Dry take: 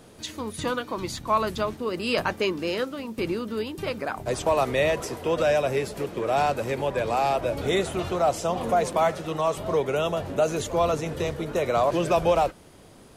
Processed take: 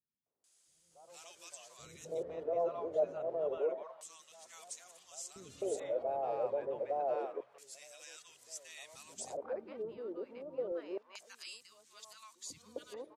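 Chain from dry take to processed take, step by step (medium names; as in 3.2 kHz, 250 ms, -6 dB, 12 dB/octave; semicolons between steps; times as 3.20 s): reverse the whole clip; LFO band-pass square 0.28 Hz 560–7300 Hz; three bands offset in time lows, mids, highs 260/440 ms, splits 230/880 Hz; trim -5.5 dB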